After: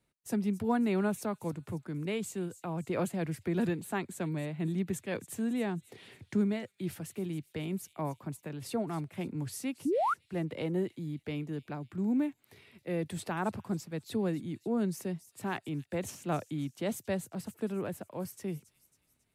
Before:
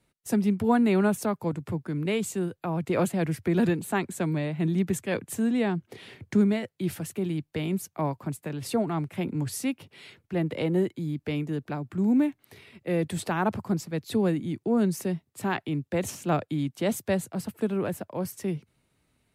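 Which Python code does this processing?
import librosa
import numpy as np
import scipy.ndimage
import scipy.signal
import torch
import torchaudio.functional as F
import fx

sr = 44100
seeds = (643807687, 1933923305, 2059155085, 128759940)

y = fx.echo_wet_highpass(x, sr, ms=273, feedback_pct=48, hz=4400.0, wet_db=-12.0)
y = fx.spec_paint(y, sr, seeds[0], shape='rise', start_s=9.85, length_s=0.29, low_hz=250.0, high_hz=1500.0, level_db=-21.0)
y = y * librosa.db_to_amplitude(-7.0)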